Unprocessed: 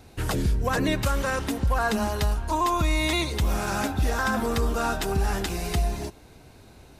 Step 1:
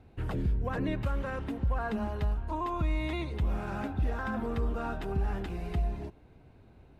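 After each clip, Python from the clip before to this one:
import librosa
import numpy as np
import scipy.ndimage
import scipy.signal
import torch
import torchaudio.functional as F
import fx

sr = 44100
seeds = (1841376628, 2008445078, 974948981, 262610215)

y = fx.curve_eq(x, sr, hz=(150.0, 2800.0, 5900.0), db=(0, -8, -22))
y = y * librosa.db_to_amplitude(-5.0)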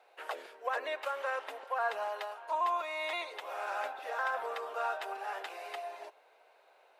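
y = scipy.signal.sosfilt(scipy.signal.butter(6, 530.0, 'highpass', fs=sr, output='sos'), x)
y = y * librosa.db_to_amplitude(4.0)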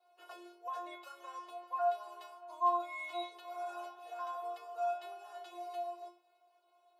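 y = fx.peak_eq(x, sr, hz=1900.0, db=-14.5, octaves=0.62)
y = fx.stiff_resonator(y, sr, f0_hz=350.0, decay_s=0.38, stiffness=0.002)
y = y * librosa.db_to_amplitude(10.0)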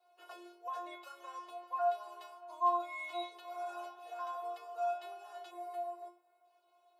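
y = fx.spec_box(x, sr, start_s=5.51, length_s=0.94, low_hz=2200.0, high_hz=7200.0, gain_db=-9)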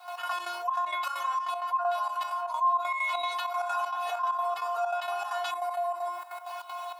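y = fx.step_gate(x, sr, bpm=195, pattern='.x.xx.xxx', floor_db=-12.0, edge_ms=4.5)
y = fx.ladder_highpass(y, sr, hz=850.0, resonance_pct=50)
y = fx.env_flatten(y, sr, amount_pct=70)
y = y * librosa.db_to_amplitude(6.0)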